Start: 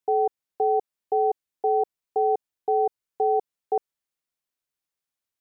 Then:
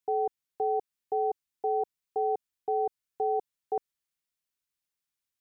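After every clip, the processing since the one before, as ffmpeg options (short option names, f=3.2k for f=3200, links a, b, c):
-af "equalizer=f=570:t=o:w=2.1:g=-7"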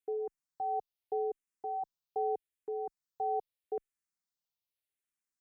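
-filter_complex "[0:a]asplit=2[a][b];[b]afreqshift=-0.81[c];[a][c]amix=inputs=2:normalize=1,volume=-3dB"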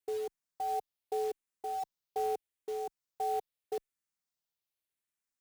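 -af "acrusher=bits=4:mode=log:mix=0:aa=0.000001"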